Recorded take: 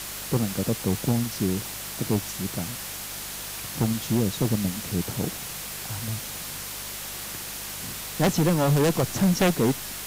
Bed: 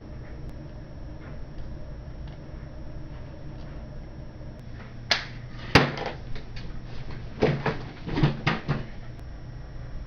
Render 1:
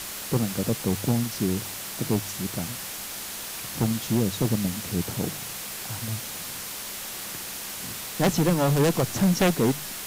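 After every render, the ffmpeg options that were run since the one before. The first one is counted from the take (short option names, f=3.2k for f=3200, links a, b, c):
-af "bandreject=f=50:t=h:w=4,bandreject=f=100:t=h:w=4,bandreject=f=150:t=h:w=4"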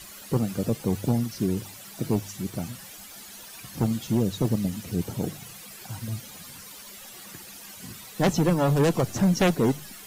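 -af "afftdn=nr=13:nf=-36"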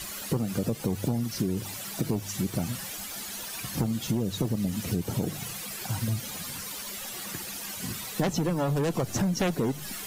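-filter_complex "[0:a]asplit=2[a][b];[b]alimiter=limit=-20dB:level=0:latency=1,volume=0.5dB[c];[a][c]amix=inputs=2:normalize=0,acompressor=threshold=-24dB:ratio=10"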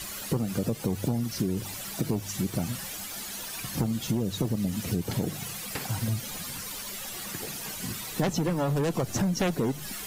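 -filter_complex "[1:a]volume=-20dB[a];[0:a][a]amix=inputs=2:normalize=0"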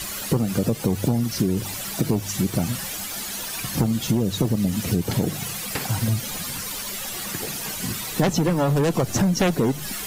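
-af "volume=6.5dB"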